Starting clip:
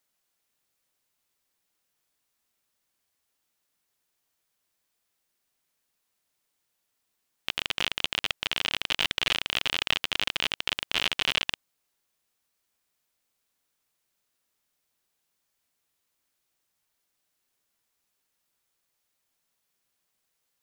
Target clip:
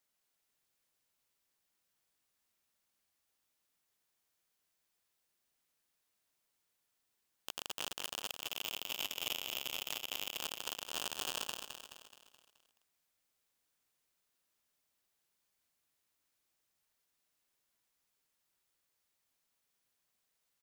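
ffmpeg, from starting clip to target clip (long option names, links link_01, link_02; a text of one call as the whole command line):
ffmpeg -i in.wav -filter_complex "[0:a]asettb=1/sr,asplit=3[link_01][link_02][link_03];[link_01]atrim=end=8.274[link_04];[link_02]atrim=start=8.27:end=10.4,asetpts=PTS-STARTPTS,afade=type=in:duration=0.004:curve=qsin,afade=type=out:start_time=2.126:duration=0.004:curve=qsin,highpass=1300[link_05];[link_03]atrim=start=10.396[link_06];[link_04][link_05]acrossfade=duration=0.004:curve1=hsin:curve2=qsin[link_07];[link_07][link_06]acrossfade=duration=0.004:curve1=qsin:curve2=hsin,alimiter=limit=-11dB:level=0:latency=1:release=99,aeval=exprs='(tanh(3.98*val(0)+0.65)-tanh(0.65))/3.98':channel_layout=same,aeval=exprs='(mod(8.41*val(0)+1,2)-1)/8.41':channel_layout=same,aeval=exprs='0.126*(cos(1*acos(clip(val(0)/0.126,-1,1)))-cos(1*PI/2))+0.01*(cos(4*acos(clip(val(0)/0.126,-1,1)))-cos(4*PI/2))+0.00891*(cos(5*acos(clip(val(0)/0.126,-1,1)))-cos(5*PI/2))+0.00355*(cos(8*acos(clip(val(0)/0.126,-1,1)))-cos(8*PI/2))':channel_layout=same,aecho=1:1:213|426|639|852|1065|1278:0.447|0.223|0.112|0.0558|0.0279|0.014,volume=-4dB" out.wav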